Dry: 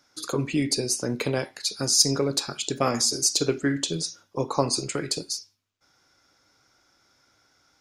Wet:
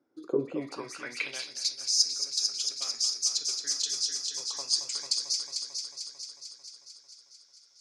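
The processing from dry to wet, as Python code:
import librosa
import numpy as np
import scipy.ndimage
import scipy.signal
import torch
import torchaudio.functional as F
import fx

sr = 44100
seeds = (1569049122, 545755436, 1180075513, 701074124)

y = fx.echo_heads(x, sr, ms=223, heads='first and second', feedback_pct=63, wet_db=-9.0)
y = fx.filter_sweep_bandpass(y, sr, from_hz=340.0, to_hz=5300.0, start_s=0.3, end_s=1.57, q=2.7)
y = fx.rider(y, sr, range_db=3, speed_s=0.5)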